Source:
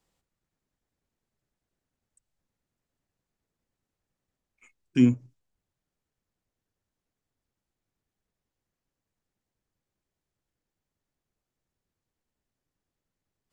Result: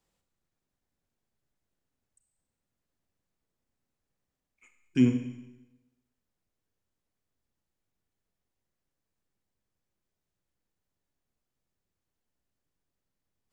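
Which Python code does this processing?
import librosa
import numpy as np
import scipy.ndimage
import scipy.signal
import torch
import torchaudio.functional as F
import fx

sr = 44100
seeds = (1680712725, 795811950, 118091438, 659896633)

y = fx.rev_schroeder(x, sr, rt60_s=0.99, comb_ms=31, drr_db=6.5)
y = y * 10.0 ** (-2.5 / 20.0)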